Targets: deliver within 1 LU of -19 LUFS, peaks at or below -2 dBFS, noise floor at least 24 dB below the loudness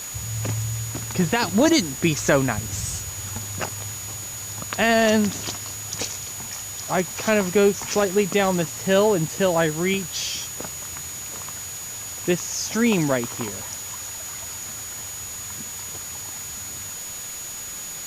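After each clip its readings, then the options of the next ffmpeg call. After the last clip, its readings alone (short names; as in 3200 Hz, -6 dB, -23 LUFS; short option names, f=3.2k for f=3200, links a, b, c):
steady tone 6800 Hz; tone level -33 dBFS; noise floor -34 dBFS; noise floor target -48 dBFS; loudness -24.0 LUFS; peak -4.0 dBFS; loudness target -19.0 LUFS
-> -af "bandreject=f=6.8k:w=30"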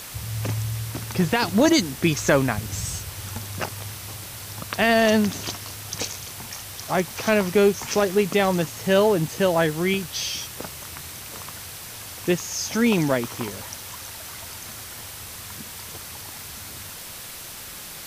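steady tone none; noise floor -38 dBFS; noise floor target -48 dBFS
-> -af "afftdn=nr=10:nf=-38"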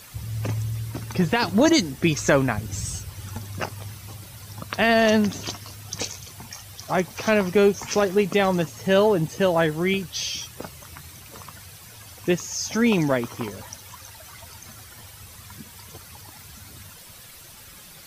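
noise floor -45 dBFS; noise floor target -47 dBFS
-> -af "afftdn=nr=6:nf=-45"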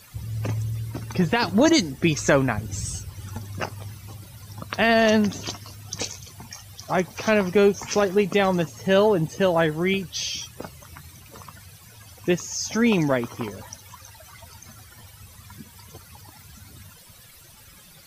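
noise floor -49 dBFS; loudness -23.0 LUFS; peak -4.5 dBFS; loudness target -19.0 LUFS
-> -af "volume=4dB,alimiter=limit=-2dB:level=0:latency=1"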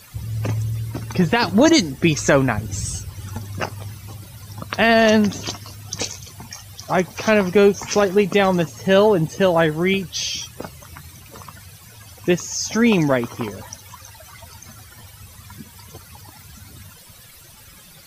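loudness -19.0 LUFS; peak -2.0 dBFS; noise floor -45 dBFS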